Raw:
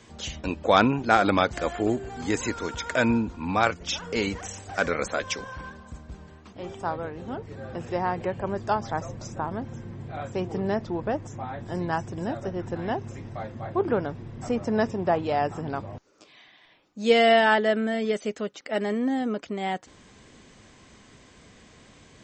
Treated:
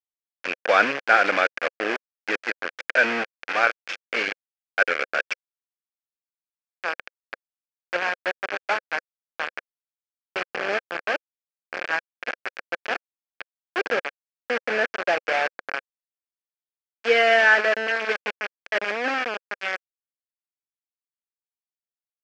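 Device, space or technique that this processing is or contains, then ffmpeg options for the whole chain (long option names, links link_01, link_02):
hand-held game console: -af "acrusher=bits=3:mix=0:aa=0.000001,highpass=460,equalizer=frequency=520:width_type=q:width=4:gain=4,equalizer=frequency=950:width_type=q:width=4:gain=-7,equalizer=frequency=1600:width_type=q:width=4:gain=10,equalizer=frequency=2400:width_type=q:width=4:gain=7,equalizer=frequency=3800:width_type=q:width=4:gain=-9,lowpass=frequency=4600:width=0.5412,lowpass=frequency=4600:width=1.3066"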